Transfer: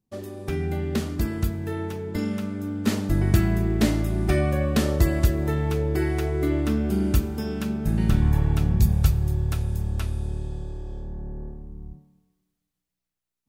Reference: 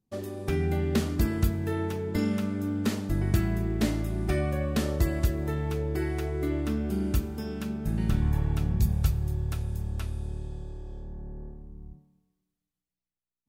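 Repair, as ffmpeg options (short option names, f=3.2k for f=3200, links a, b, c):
-af "asetnsamples=n=441:p=0,asendcmd='2.87 volume volume -5.5dB',volume=0dB"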